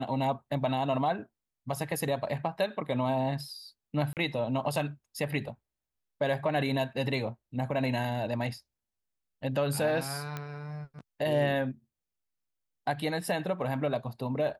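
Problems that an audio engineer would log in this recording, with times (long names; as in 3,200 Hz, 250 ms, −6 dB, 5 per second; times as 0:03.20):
0:04.13–0:04.17: drop-out 38 ms
0:10.37: click −21 dBFS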